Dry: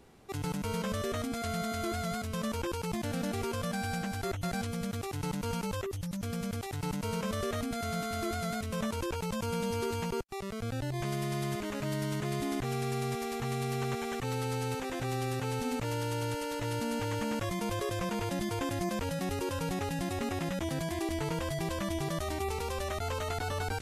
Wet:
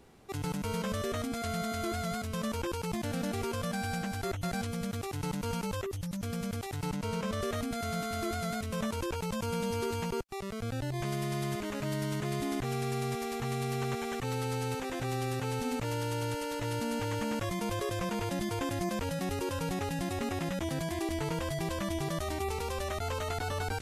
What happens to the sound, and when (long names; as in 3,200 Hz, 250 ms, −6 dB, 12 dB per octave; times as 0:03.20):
0:06.90–0:07.42: high-shelf EQ 9,900 Hz −9 dB